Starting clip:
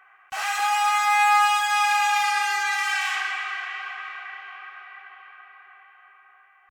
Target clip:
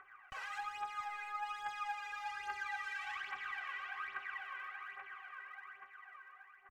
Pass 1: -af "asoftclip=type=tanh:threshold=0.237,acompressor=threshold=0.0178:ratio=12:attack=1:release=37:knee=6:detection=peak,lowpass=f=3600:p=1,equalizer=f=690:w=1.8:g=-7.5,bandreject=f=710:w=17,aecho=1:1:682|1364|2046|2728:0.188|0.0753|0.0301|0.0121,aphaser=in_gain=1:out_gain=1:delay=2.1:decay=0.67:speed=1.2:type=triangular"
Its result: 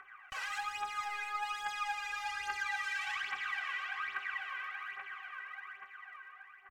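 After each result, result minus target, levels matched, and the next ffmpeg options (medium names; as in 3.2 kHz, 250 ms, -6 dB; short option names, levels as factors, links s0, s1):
saturation: distortion +13 dB; 4 kHz band +3.5 dB
-af "asoftclip=type=tanh:threshold=0.562,acompressor=threshold=0.0178:ratio=12:attack=1:release=37:knee=6:detection=peak,lowpass=f=3600:p=1,equalizer=f=690:w=1.8:g=-7.5,bandreject=f=710:w=17,aecho=1:1:682|1364|2046|2728:0.188|0.0753|0.0301|0.0121,aphaser=in_gain=1:out_gain=1:delay=2.1:decay=0.67:speed=1.2:type=triangular"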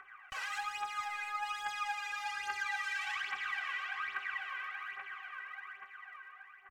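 4 kHz band +3.5 dB
-af "asoftclip=type=tanh:threshold=0.562,acompressor=threshold=0.0178:ratio=12:attack=1:release=37:knee=6:detection=peak,lowpass=f=970:p=1,equalizer=f=690:w=1.8:g=-7.5,bandreject=f=710:w=17,aecho=1:1:682|1364|2046|2728:0.188|0.0753|0.0301|0.0121,aphaser=in_gain=1:out_gain=1:delay=2.1:decay=0.67:speed=1.2:type=triangular"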